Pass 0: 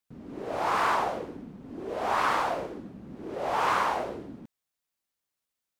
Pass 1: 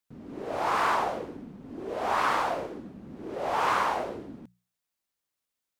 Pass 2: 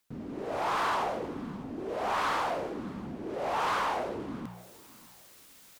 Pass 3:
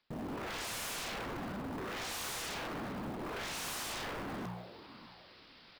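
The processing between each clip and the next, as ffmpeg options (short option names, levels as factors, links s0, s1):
-af "bandreject=f=60:t=h:w=6,bandreject=f=120:t=h:w=6,bandreject=f=180:t=h:w=6"
-af "areverse,acompressor=mode=upward:threshold=0.0282:ratio=2.5,areverse,asoftclip=type=tanh:threshold=0.0596,aecho=1:1:604|1208:0.0891|0.0232"
-af "aresample=11025,aresample=44100,acrusher=bits=7:mode=log:mix=0:aa=0.000001,aeval=exprs='0.0119*(abs(mod(val(0)/0.0119+3,4)-2)-1)':c=same,volume=1.41"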